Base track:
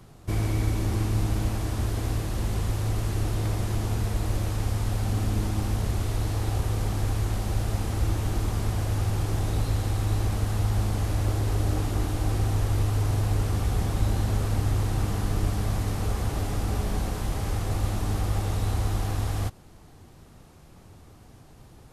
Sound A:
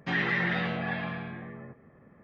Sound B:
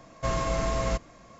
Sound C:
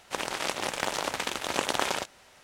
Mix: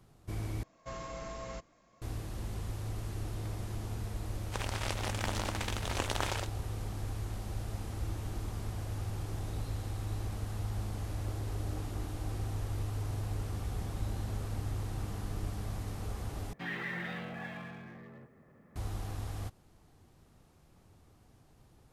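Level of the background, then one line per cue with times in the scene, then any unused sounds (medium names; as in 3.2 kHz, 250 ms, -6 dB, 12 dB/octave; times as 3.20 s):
base track -11.5 dB
0.63 s: replace with B -13.5 dB + bass shelf 140 Hz -4.5 dB
4.41 s: add C -7 dB
16.53 s: replace with A -11.5 dB + companding laws mixed up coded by mu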